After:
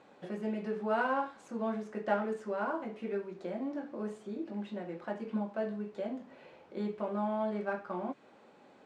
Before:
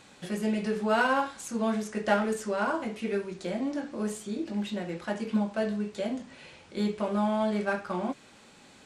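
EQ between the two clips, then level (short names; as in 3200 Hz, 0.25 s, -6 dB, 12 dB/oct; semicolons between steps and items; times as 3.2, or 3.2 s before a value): dynamic EQ 540 Hz, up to -6 dB, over -41 dBFS, Q 0.91; band-pass 550 Hz, Q 0.94; +1.0 dB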